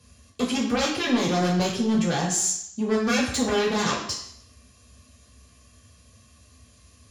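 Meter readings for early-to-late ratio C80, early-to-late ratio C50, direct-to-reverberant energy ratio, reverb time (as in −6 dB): 8.0 dB, 5.0 dB, −5.5 dB, 0.65 s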